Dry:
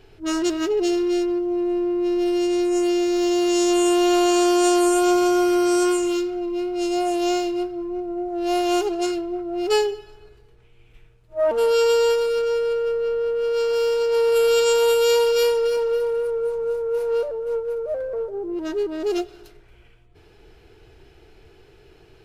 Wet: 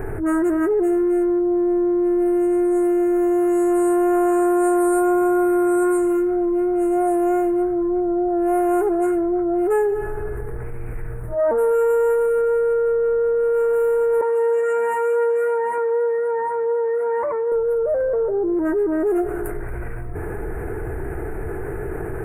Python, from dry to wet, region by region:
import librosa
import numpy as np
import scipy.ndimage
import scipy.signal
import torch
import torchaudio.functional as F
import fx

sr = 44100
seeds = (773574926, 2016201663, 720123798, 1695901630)

y = fx.chain(x, sr, fx.lower_of_two(delay_ms=8.3),
    fx.bandpass_edges(low_hz=260.0, high_hz=5600.0),
    fx.comb_cascade(direction='rising', hz=1.3), at=(14.21, 17.52))
y = scipy.signal.sosfilt(scipy.signal.ellip(3, 1.0, 50, [1800.0, 9100.0], 'bandstop', fs=sr, output='sos'), y)
y = fx.env_flatten(y, sr, amount_pct=70)